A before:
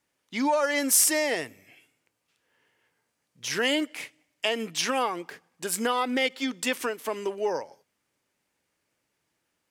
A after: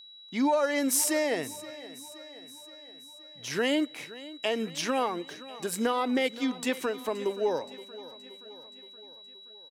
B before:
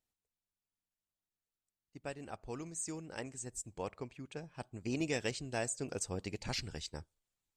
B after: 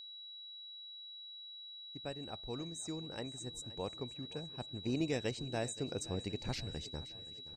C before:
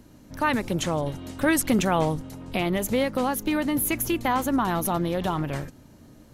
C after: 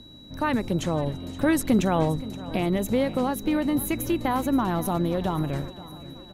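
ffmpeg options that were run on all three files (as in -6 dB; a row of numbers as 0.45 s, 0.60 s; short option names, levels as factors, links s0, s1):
-filter_complex "[0:a]asplit=2[s0][s1];[s1]aecho=0:1:523|1046|1569|2092|2615:0.133|0.076|0.0433|0.0247|0.0141[s2];[s0][s2]amix=inputs=2:normalize=0,aeval=exprs='val(0)+0.00794*sin(2*PI*3900*n/s)':c=same,tiltshelf=f=860:g=4,volume=0.794"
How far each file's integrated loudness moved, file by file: -2.5 LU, -1.0 LU, 0.0 LU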